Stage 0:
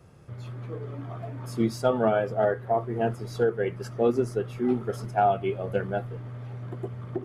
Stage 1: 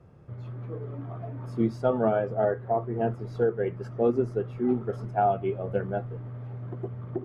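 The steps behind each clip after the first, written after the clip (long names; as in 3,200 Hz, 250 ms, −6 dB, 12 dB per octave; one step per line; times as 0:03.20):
low-pass filter 1,100 Hz 6 dB per octave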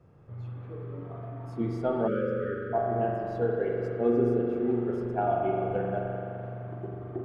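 spring reverb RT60 3.2 s, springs 42 ms, chirp 65 ms, DRR −2 dB
time-frequency box erased 0:02.07–0:02.73, 600–1,200 Hz
level −4.5 dB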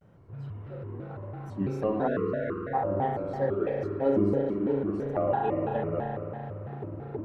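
pitch modulation by a square or saw wave square 3 Hz, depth 250 cents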